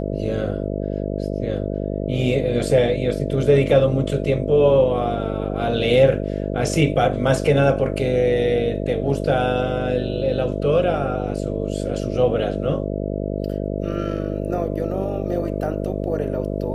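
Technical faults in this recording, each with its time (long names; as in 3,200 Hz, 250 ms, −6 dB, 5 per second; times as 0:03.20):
mains buzz 50 Hz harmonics 13 −25 dBFS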